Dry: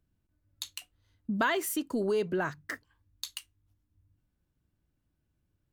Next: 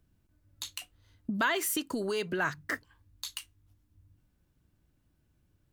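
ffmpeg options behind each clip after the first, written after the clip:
-filter_complex "[0:a]acrossover=split=1200[s0][s1];[s0]acompressor=threshold=0.0126:ratio=6[s2];[s1]alimiter=level_in=1.68:limit=0.0631:level=0:latency=1:release=31,volume=0.596[s3];[s2][s3]amix=inputs=2:normalize=0,volume=2.11"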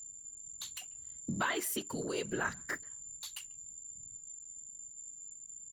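-filter_complex "[0:a]asplit=2[s0][s1];[s1]adelay=140,highpass=300,lowpass=3400,asoftclip=type=hard:threshold=0.0447,volume=0.0501[s2];[s0][s2]amix=inputs=2:normalize=0,aeval=exprs='val(0)+0.00891*sin(2*PI*7200*n/s)':c=same,afftfilt=real='hypot(re,im)*cos(2*PI*random(0))':imag='hypot(re,im)*sin(2*PI*random(1))':win_size=512:overlap=0.75,volume=1.12"

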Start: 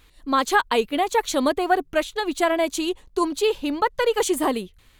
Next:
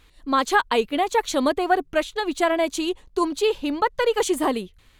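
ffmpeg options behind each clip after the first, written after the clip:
-af "highshelf=f=11000:g=-7.5"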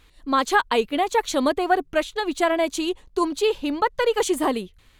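-af anull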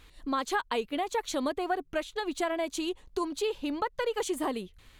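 -af "acompressor=threshold=0.0178:ratio=2"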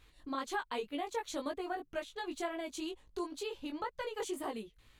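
-af "flanger=delay=17.5:depth=2.5:speed=2,volume=0.596"

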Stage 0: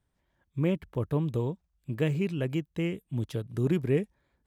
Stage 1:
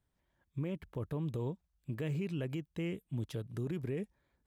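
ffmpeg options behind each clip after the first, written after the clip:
-af "alimiter=level_in=1.19:limit=0.0631:level=0:latency=1:release=63,volume=0.841,volume=0.631"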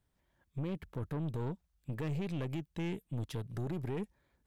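-af "aeval=exprs='(tanh(63.1*val(0)+0.4)-tanh(0.4))/63.1':c=same,volume=1.58"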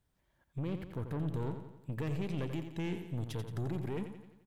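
-af "aecho=1:1:87|174|261|348|435|522:0.376|0.199|0.106|0.056|0.0297|0.0157"

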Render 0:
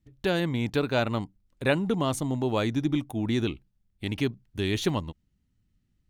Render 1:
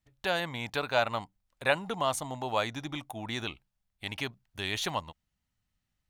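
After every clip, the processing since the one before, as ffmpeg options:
-af "lowshelf=f=500:t=q:w=1.5:g=-11"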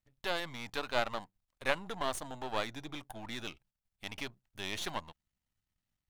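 -af "aeval=exprs='if(lt(val(0),0),0.251*val(0),val(0))':c=same,volume=0.75"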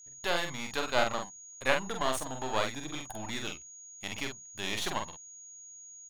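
-filter_complex "[0:a]aeval=exprs='val(0)+0.002*sin(2*PI*6700*n/s)':c=same,asplit=2[s0][s1];[s1]adelay=46,volume=0.562[s2];[s0][s2]amix=inputs=2:normalize=0,volume=1.5"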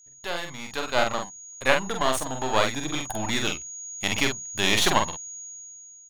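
-af "dynaudnorm=f=360:g=5:m=5.62,volume=0.891"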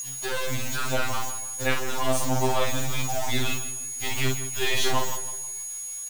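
-filter_complex "[0:a]aeval=exprs='val(0)+0.5*0.126*sgn(val(0))':c=same,asplit=2[s0][s1];[s1]adelay=159,lowpass=f=3500:p=1,volume=0.266,asplit=2[s2][s3];[s3]adelay=159,lowpass=f=3500:p=1,volume=0.42,asplit=2[s4][s5];[s5]adelay=159,lowpass=f=3500:p=1,volume=0.42,asplit=2[s6][s7];[s7]adelay=159,lowpass=f=3500:p=1,volume=0.42[s8];[s0][s2][s4][s6][s8]amix=inputs=5:normalize=0,afftfilt=real='re*2.45*eq(mod(b,6),0)':imag='im*2.45*eq(mod(b,6),0)':win_size=2048:overlap=0.75,volume=0.531"

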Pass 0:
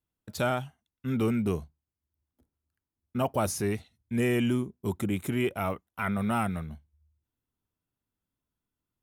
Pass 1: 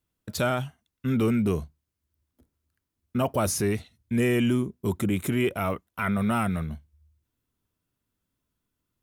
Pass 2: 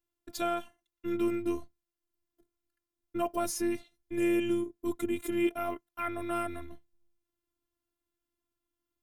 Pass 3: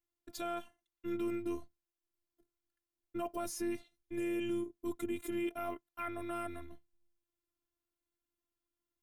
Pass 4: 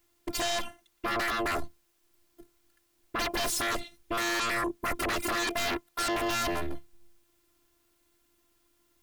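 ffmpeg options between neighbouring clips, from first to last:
-filter_complex "[0:a]equalizer=f=810:w=5:g=-5,asplit=2[s0][s1];[s1]alimiter=level_in=1.41:limit=0.0631:level=0:latency=1:release=23,volume=0.708,volume=1.12[s2];[s0][s2]amix=inputs=2:normalize=0"
-af "afftfilt=real='hypot(re,im)*cos(PI*b)':imag='0':win_size=512:overlap=0.75,equalizer=f=250:w=0.36:g=3,volume=0.631"
-af "alimiter=limit=0.0841:level=0:latency=1:release=17,volume=0.562"
-af "aeval=exprs='0.0473*sin(PI/2*7.08*val(0)/0.0473)':c=same"

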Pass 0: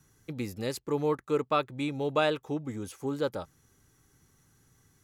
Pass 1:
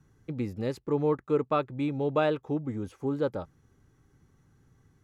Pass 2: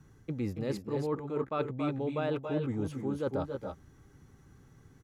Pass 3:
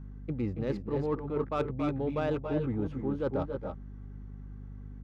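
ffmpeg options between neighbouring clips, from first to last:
-af "lowpass=f=1700:p=1,lowshelf=f=470:g=4"
-af "areverse,acompressor=threshold=0.0178:ratio=6,areverse,aecho=1:1:278|293:0.398|0.398,volume=1.68"
-af "adynamicsmooth=sensitivity=5.5:basefreq=2200,aeval=exprs='val(0)+0.00631*(sin(2*PI*50*n/s)+sin(2*PI*2*50*n/s)/2+sin(2*PI*3*50*n/s)/3+sin(2*PI*4*50*n/s)/4+sin(2*PI*5*50*n/s)/5)':c=same,volume=1.19"

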